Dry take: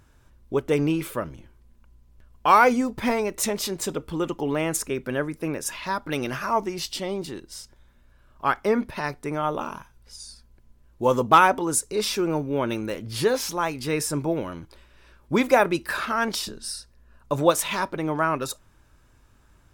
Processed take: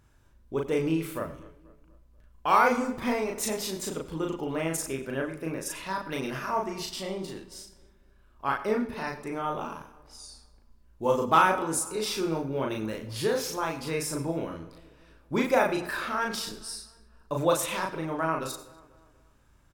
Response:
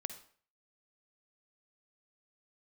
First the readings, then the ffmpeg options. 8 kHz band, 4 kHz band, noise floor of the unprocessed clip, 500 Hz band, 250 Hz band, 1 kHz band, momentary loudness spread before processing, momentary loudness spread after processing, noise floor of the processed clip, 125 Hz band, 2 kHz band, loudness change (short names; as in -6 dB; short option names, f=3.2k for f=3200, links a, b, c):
-4.5 dB, -4.5 dB, -58 dBFS, -4.5 dB, -4.5 dB, -4.5 dB, 14 LU, 15 LU, -60 dBFS, -4.5 dB, -4.5 dB, -4.5 dB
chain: -filter_complex "[0:a]asplit=2[a][b];[b]adelay=242,lowpass=f=2.4k:p=1,volume=-20dB,asplit=2[c][d];[d]adelay=242,lowpass=f=2.4k:p=1,volume=0.49,asplit=2[e][f];[f]adelay=242,lowpass=f=2.4k:p=1,volume=0.49,asplit=2[g][h];[h]adelay=242,lowpass=f=2.4k:p=1,volume=0.49[i];[a][c][e][g][i]amix=inputs=5:normalize=0,asplit=2[j][k];[1:a]atrim=start_sample=2205,adelay=37[l];[k][l]afir=irnorm=-1:irlink=0,volume=0dB[m];[j][m]amix=inputs=2:normalize=0,volume=-7dB"